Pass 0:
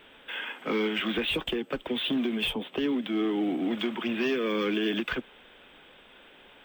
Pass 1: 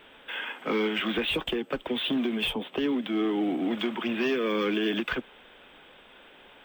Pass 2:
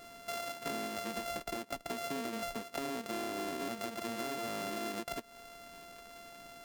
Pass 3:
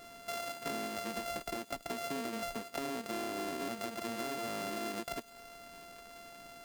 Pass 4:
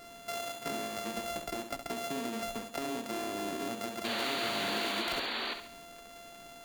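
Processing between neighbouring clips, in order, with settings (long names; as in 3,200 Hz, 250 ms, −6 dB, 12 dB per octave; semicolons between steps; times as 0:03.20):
parametric band 870 Hz +2.5 dB 1.8 octaves
samples sorted by size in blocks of 64 samples; downward compressor 10 to 1, threshold −37 dBFS, peak gain reduction 14 dB; level +1 dB
delay with a high-pass on its return 101 ms, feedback 61%, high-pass 4,300 Hz, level −13.5 dB
sound drawn into the spectrogram noise, 0:04.04–0:05.54, 220–4,700 Hz −38 dBFS; flutter between parallel walls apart 11.5 metres, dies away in 0.49 s; level +1.5 dB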